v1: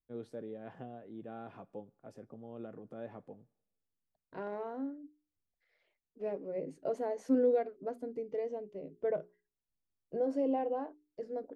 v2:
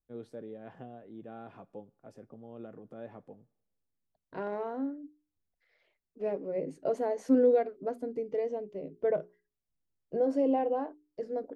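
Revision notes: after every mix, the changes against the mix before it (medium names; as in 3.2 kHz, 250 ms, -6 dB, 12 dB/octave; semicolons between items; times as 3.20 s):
second voice +4.5 dB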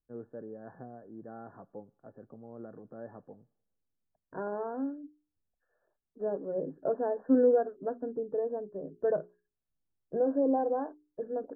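master: add brick-wall FIR low-pass 1.8 kHz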